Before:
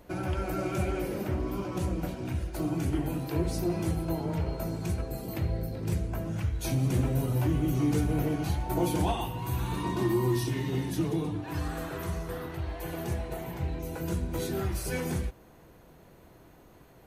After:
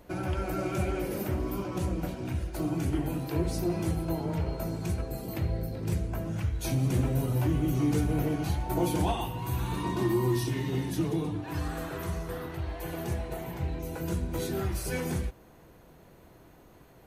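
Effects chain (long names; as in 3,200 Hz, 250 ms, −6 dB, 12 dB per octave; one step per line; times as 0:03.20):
0:01.10–0:01.62: high-shelf EQ 6,900 Hz → 12,000 Hz +11 dB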